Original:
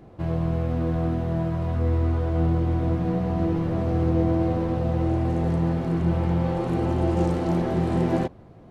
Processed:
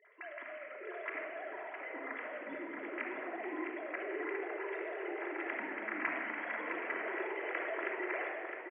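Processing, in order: formants replaced by sine waves; band-pass filter 2 kHz, Q 4.1; on a send: delay 661 ms -6.5 dB; on the sum: simulated room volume 3000 m³, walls mixed, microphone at 3 m; trim -1.5 dB

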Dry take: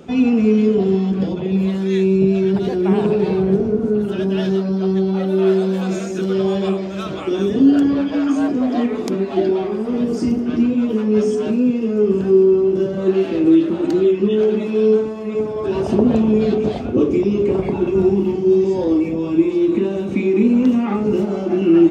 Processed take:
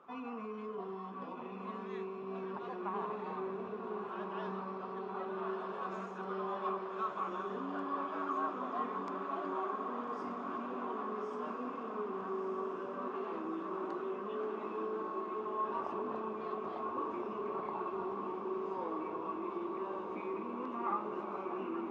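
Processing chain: peak limiter -10 dBFS, peak gain reduction 6.5 dB; band-pass filter 1.1 kHz, Q 8.5; echo that smears into a reverb 1297 ms, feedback 71%, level -4.5 dB; trim +2 dB

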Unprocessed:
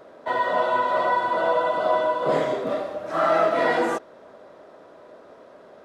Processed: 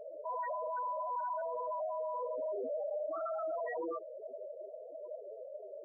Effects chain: 1.86–2.51 s: compressor with a negative ratio -26 dBFS, ratio -0.5; loudest bins only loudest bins 4; peak limiter -37.5 dBFS, peak gain reduction 23.5 dB; trim +5.5 dB

